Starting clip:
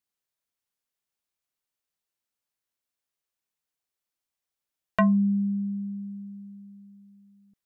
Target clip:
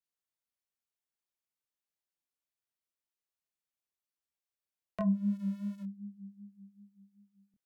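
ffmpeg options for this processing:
ffmpeg -i in.wav -filter_complex "[0:a]asettb=1/sr,asplit=3[link_01][link_02][link_03];[link_01]atrim=end=5.124[link_04];[link_02]atrim=start=5.12:end=5.83,asetpts=PTS-STARTPTS,afade=type=in:duration=0.004:curve=qsin,afade=type=out:start_time=0.706:duration=0.004:curve=qsin,aeval=exprs='val(0)+0.5*0.00891*sgn(val(0))':channel_layout=same[link_05];[link_03]atrim=start=5.826[link_06];[link_04][link_05]acrossfade=duration=0.004:curve1=hsin:curve2=qsin[link_07];[link_07][link_06]acrossfade=duration=0.004:curve1=qsin:curve2=hsin,acrossover=split=130|750[link_08][link_09][link_10];[link_10]acompressor=threshold=-44dB:ratio=5[link_11];[link_08][link_09][link_11]amix=inputs=3:normalize=0,flanger=delay=22.5:depth=4.9:speed=2.6,volume=-5dB" out.wav

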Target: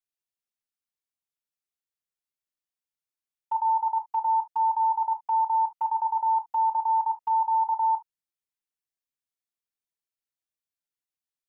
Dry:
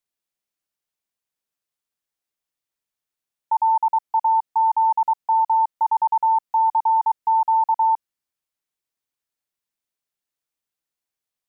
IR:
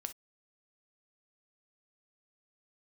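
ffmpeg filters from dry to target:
-filter_complex "[0:a]agate=range=-6dB:threshold=-26dB:ratio=16:detection=peak,equalizer=frequency=600:width_type=o:width=2.2:gain=-3.5[link_01];[1:a]atrim=start_sample=2205[link_02];[link_01][link_02]afir=irnorm=-1:irlink=0"

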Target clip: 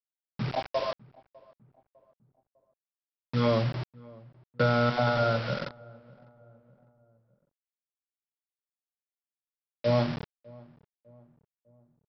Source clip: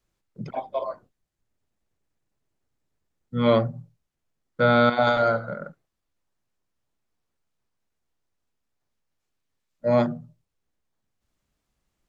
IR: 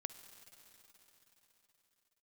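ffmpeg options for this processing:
-filter_complex "[0:a]lowpass=4100,equalizer=frequency=130:width=6:gain=13,acrossover=split=140|300|2100[link_01][link_02][link_03][link_04];[link_01]acompressor=threshold=-33dB:ratio=4[link_05];[link_02]acompressor=threshold=-32dB:ratio=4[link_06];[link_03]acompressor=threshold=-25dB:ratio=4[link_07];[link_04]acompressor=threshold=-45dB:ratio=4[link_08];[link_05][link_06][link_07][link_08]amix=inputs=4:normalize=0,aresample=11025,acrusher=bits=5:mix=0:aa=0.000001,aresample=44100,asplit=2[link_09][link_10];[link_10]adelay=602,lowpass=frequency=940:poles=1,volume=-23dB,asplit=2[link_11][link_12];[link_12]adelay=602,lowpass=frequency=940:poles=1,volume=0.51,asplit=2[link_13][link_14];[link_14]adelay=602,lowpass=frequency=940:poles=1,volume=0.51[link_15];[link_09][link_11][link_13][link_15]amix=inputs=4:normalize=0"

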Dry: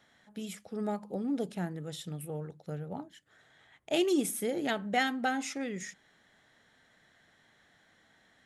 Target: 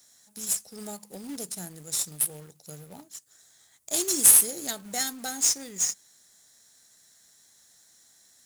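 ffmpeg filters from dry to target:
ffmpeg -i in.wav -af "aexciter=amount=11.9:drive=9.1:freq=4500,acrusher=bits=2:mode=log:mix=0:aa=0.000001,volume=-7dB" out.wav

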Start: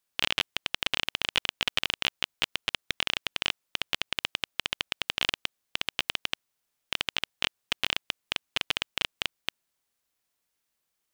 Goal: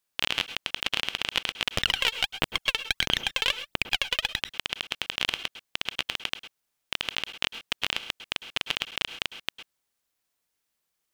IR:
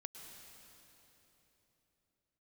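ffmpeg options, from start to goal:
-filter_complex "[0:a]asettb=1/sr,asplit=3[link_01][link_02][link_03];[link_01]atrim=end=1.764[link_04];[link_02]atrim=start=1.76:end=4.43,asetpts=PTS-STARTPTS,afade=type=in:duration=0.004:curve=qsin,afade=type=out:start_time=2.666:duration=0.004:curve=qsin,aphaser=in_gain=1:out_gain=1:delay=2.3:decay=0.77:speed=1.5:type=triangular[link_05];[link_03]atrim=start=4.426[link_06];[link_04][link_05]acrossfade=duration=0.004:curve1=hsin:curve2=qsin[link_07];[link_07][link_06]acrossfade=duration=0.004:curve1=qsin:curve2=hsin[link_08];[1:a]atrim=start_sample=2205,atrim=end_sample=6174[link_09];[link_08][link_09]afir=irnorm=-1:irlink=0,volume=6dB"

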